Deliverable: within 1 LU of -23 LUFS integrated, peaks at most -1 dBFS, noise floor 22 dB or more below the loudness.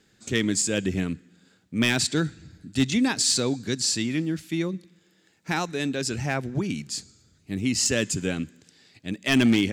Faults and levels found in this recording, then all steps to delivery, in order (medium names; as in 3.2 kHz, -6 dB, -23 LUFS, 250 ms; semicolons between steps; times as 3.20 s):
clipped samples 0.2%; clipping level -13.0 dBFS; loudness -25.5 LUFS; peak level -13.0 dBFS; loudness target -23.0 LUFS
-> clip repair -13 dBFS; trim +2.5 dB